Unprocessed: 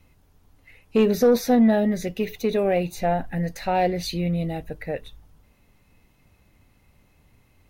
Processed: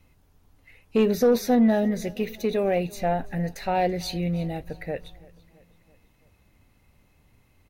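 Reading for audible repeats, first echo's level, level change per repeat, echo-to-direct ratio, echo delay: 3, -23.0 dB, -5.0 dB, -21.5 dB, 332 ms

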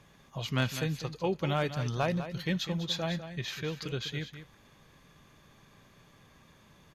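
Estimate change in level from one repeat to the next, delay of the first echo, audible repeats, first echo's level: no regular repeats, 200 ms, 1, -11.0 dB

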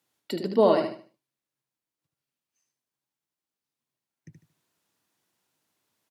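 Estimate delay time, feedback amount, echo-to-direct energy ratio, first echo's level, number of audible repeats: 75 ms, 29%, -5.5 dB, -6.0 dB, 3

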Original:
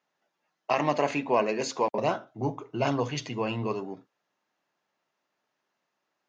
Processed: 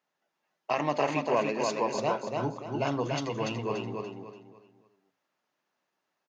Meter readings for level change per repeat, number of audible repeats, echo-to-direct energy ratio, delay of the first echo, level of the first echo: -10.0 dB, 4, -3.0 dB, 289 ms, -3.5 dB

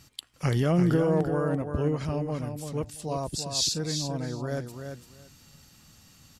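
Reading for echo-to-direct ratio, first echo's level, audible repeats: -7.0 dB, -7.0 dB, 2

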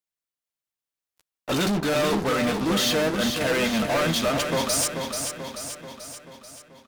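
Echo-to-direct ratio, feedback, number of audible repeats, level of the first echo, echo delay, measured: -4.5 dB, 56%, 6, -6.0 dB, 436 ms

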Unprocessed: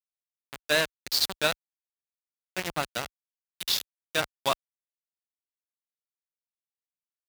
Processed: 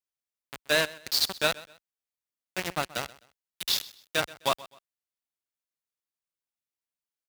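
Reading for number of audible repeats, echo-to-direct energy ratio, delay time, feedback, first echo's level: 2, -19.5 dB, 128 ms, 30%, -20.0 dB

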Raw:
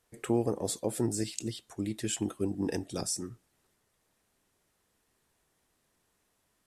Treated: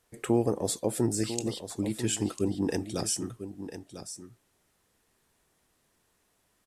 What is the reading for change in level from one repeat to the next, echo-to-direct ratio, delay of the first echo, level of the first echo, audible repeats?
no regular repeats, -11.0 dB, 998 ms, -11.0 dB, 1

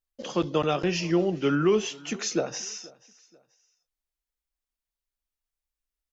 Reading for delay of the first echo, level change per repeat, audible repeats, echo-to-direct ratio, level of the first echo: 483 ms, -9.5 dB, 2, -22.5 dB, -23.0 dB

